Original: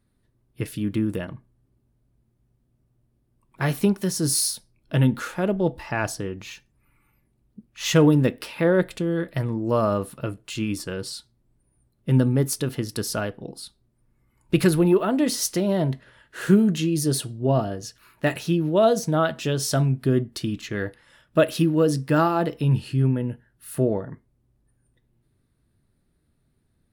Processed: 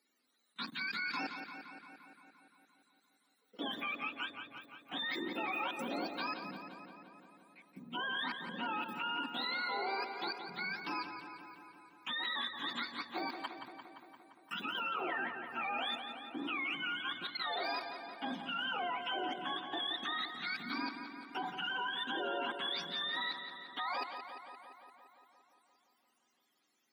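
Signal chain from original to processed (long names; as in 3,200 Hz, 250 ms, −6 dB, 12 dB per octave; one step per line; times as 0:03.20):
frequency axis turned over on the octave scale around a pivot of 690 Hz
brickwall limiter −19 dBFS, peak gain reduction 11 dB
output level in coarse steps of 20 dB
Chebyshev high-pass filter 230 Hz, order 4
feedback echo with a low-pass in the loop 173 ms, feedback 72%, low-pass 4,900 Hz, level −8 dB
level +3 dB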